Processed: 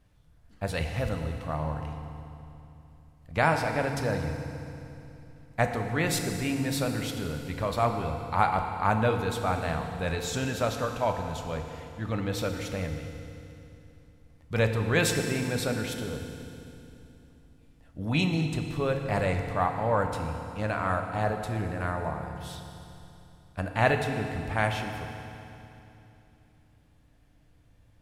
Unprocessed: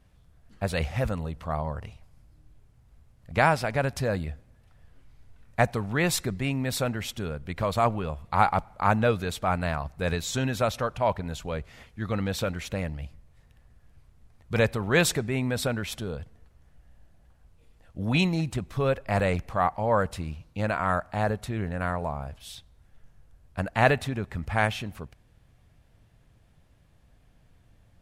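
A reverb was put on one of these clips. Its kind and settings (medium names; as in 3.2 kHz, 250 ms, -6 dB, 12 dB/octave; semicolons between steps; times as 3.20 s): FDN reverb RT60 2.9 s, low-frequency decay 1.25×, high-frequency decay 0.95×, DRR 4 dB; trim -3 dB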